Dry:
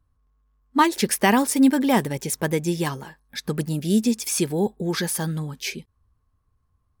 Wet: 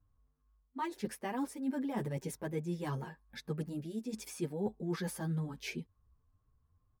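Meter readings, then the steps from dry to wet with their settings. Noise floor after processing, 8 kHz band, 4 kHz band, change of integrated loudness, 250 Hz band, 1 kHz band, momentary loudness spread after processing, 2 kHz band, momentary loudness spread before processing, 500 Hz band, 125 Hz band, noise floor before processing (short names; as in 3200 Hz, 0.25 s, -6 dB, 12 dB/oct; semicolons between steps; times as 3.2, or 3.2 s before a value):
-76 dBFS, -22.0 dB, -20.0 dB, -16.5 dB, -16.0 dB, -18.5 dB, 6 LU, -18.5 dB, 12 LU, -14.5 dB, -11.0 dB, -70 dBFS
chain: high shelf 2200 Hz -11.5 dB; reverse; compressor 6:1, threshold -30 dBFS, peak gain reduction 16 dB; reverse; endless flanger 8 ms +2.2 Hz; gain -1.5 dB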